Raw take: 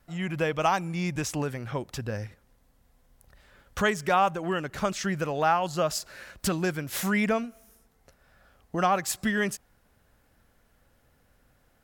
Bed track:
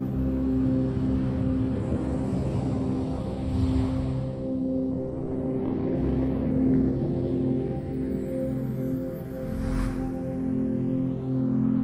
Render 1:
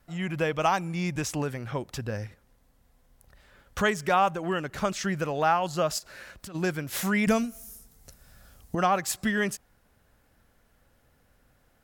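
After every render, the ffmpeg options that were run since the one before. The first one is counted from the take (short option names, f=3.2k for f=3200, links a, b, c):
-filter_complex "[0:a]asplit=3[a][b][c];[a]afade=t=out:st=5.98:d=0.02[d];[b]acompressor=threshold=-39dB:ratio=12:attack=3.2:release=140:knee=1:detection=peak,afade=t=in:st=5.98:d=0.02,afade=t=out:st=6.54:d=0.02[e];[c]afade=t=in:st=6.54:d=0.02[f];[d][e][f]amix=inputs=3:normalize=0,asettb=1/sr,asplit=3[g][h][i];[g]atrim=end=7.274[j];[h]atrim=start=7.27:end=8.75,asetpts=PTS-STARTPTS,afade=t=in:d=0.004:c=qsin,afade=t=out:st=1.476:d=0.004:c=qsin,bass=f=250:g=9,treble=f=4k:g=15[k];[i]atrim=start=8.746[l];[j][k]acrossfade=d=0.004:c1=hsin:c2=qsin[m];[m][l]acrossfade=d=0.004:c1=qsin:c2=hsin"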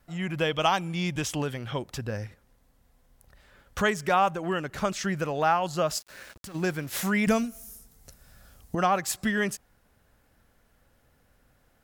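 -filter_complex "[0:a]asettb=1/sr,asplit=3[a][b][c];[a]atrim=end=0.404[d];[b]atrim=start=0.4:end=1.79,asetpts=PTS-STARTPTS,afade=t=in:d=0.004:c=qsin,afade=t=out:st=1.386:d=0.004:c=qsin,equalizer=f=3.2k:t=o:w=0.29:g=12.5[e];[c]atrim=start=1.786[f];[d][e]acrossfade=d=0.004:c1=hsin:c2=qsin[g];[g][f]acrossfade=d=0.004:c1=qsin:c2=hsin,asettb=1/sr,asplit=3[h][i][j];[h]atrim=end=5.884[k];[i]atrim=start=5.88:end=7.48,asetpts=PTS-STARTPTS,afade=t=in:d=0.004:c=qsin,afade=t=out:st=1.596:d=0.004:c=qsin,aeval=exprs='val(0)*gte(abs(val(0)),0.00501)':c=same[l];[j]atrim=start=7.476[m];[k][l]acrossfade=d=0.004:c1=hsin:c2=qsin[n];[n][m]acrossfade=d=0.004:c1=qsin:c2=hsin"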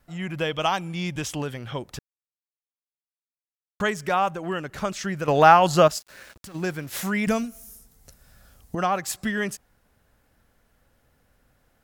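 -filter_complex "[0:a]asplit=5[a][b][c][d][e];[a]atrim=end=1.99,asetpts=PTS-STARTPTS,afade=t=out:st=1.986:d=0.004:c=hsin[f];[b]atrim=start=1.99:end=3.8,asetpts=PTS-STARTPTS,volume=0[g];[c]atrim=start=3.8:end=5.282,asetpts=PTS-STARTPTS,afade=t=in:d=0.004:c=hsin[h];[d]atrim=start=5.278:end=5.882,asetpts=PTS-STARTPTS,volume=10dB[i];[e]atrim=start=5.878[j];[f][g][h]concat=n=3:v=0:a=1[k];[k][i]acrossfade=d=0.004:c1=hsin:c2=hsin[l];[l][j]acrossfade=d=0.004:c1=hsin:c2=hsin"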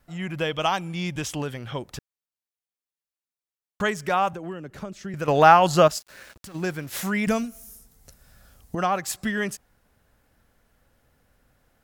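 -filter_complex "[0:a]asettb=1/sr,asplit=3[a][b][c];[a]atrim=end=4.334[d];[b]atrim=start=4.33:end=5.14,asetpts=PTS-STARTPTS,afade=t=in:d=0.004:c=qsin,afade=t=out:st=0.806:d=0.004:c=qsin,acrossover=split=150|540[e][f][g];[e]acompressor=threshold=-48dB:ratio=4[h];[f]acompressor=threshold=-33dB:ratio=4[i];[g]acompressor=threshold=-45dB:ratio=4[j];[h][i][j]amix=inputs=3:normalize=0[k];[c]atrim=start=5.136[l];[d][k]acrossfade=d=0.004:c1=hsin:c2=qsin[m];[m][l]acrossfade=d=0.004:c1=qsin:c2=hsin"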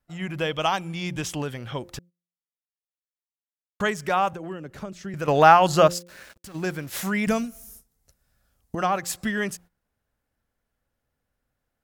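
-af "bandreject=f=174.8:t=h:w=4,bandreject=f=349.6:t=h:w=4,bandreject=f=524.4:t=h:w=4,agate=range=-15dB:threshold=-47dB:ratio=16:detection=peak"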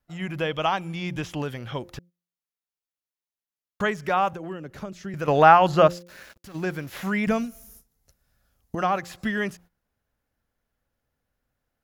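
-filter_complex "[0:a]acrossover=split=3400[a][b];[b]acompressor=threshold=-44dB:ratio=4:attack=1:release=60[c];[a][c]amix=inputs=2:normalize=0,equalizer=f=8.3k:w=6.6:g=-8.5"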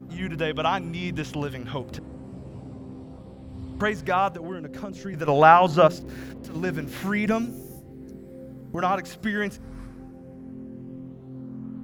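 -filter_complex "[1:a]volume=-13dB[a];[0:a][a]amix=inputs=2:normalize=0"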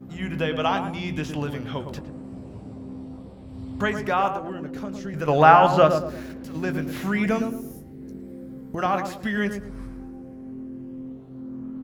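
-filter_complex "[0:a]asplit=2[a][b];[b]adelay=20,volume=-11.5dB[c];[a][c]amix=inputs=2:normalize=0,asplit=2[d][e];[e]adelay=111,lowpass=f=1.1k:p=1,volume=-6dB,asplit=2[f][g];[g]adelay=111,lowpass=f=1.1k:p=1,volume=0.39,asplit=2[h][i];[i]adelay=111,lowpass=f=1.1k:p=1,volume=0.39,asplit=2[j][k];[k]adelay=111,lowpass=f=1.1k:p=1,volume=0.39,asplit=2[l][m];[m]adelay=111,lowpass=f=1.1k:p=1,volume=0.39[n];[f][h][j][l][n]amix=inputs=5:normalize=0[o];[d][o]amix=inputs=2:normalize=0"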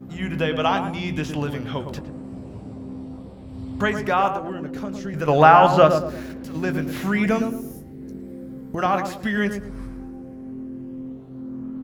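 -af "volume=2.5dB,alimiter=limit=-1dB:level=0:latency=1"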